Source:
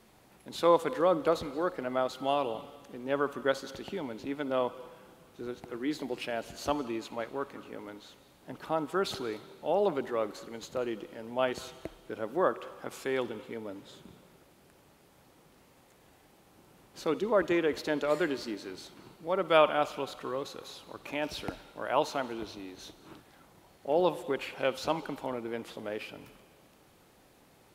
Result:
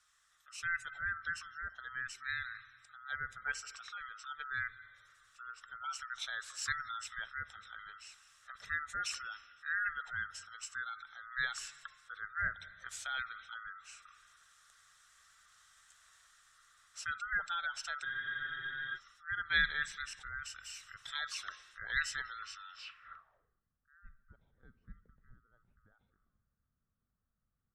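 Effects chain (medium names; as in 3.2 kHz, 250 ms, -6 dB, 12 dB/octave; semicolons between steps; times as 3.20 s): split-band scrambler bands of 1 kHz; spectral gate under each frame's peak -30 dB strong; amplifier tone stack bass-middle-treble 10-0-10; gain riding within 4 dB 2 s; low-pass sweep 7.7 kHz -> 250 Hz, 22.62–23.65 s; spectral freeze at 18.07 s, 0.90 s; trim -4 dB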